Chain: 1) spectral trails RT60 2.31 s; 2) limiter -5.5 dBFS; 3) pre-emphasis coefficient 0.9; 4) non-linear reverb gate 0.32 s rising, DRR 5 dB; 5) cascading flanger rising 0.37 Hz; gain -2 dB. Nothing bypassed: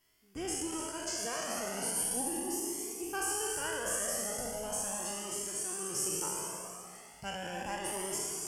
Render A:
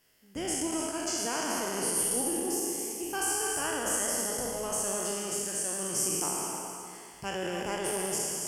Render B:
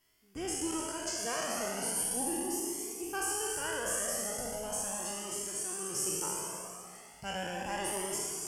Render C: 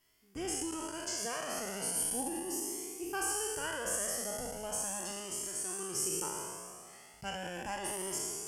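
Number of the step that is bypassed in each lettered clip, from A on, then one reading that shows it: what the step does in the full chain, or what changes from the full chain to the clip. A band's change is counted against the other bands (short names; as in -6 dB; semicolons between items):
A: 5, loudness change +4.5 LU; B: 2, momentary loudness spread change -1 LU; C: 4, loudness change -1.0 LU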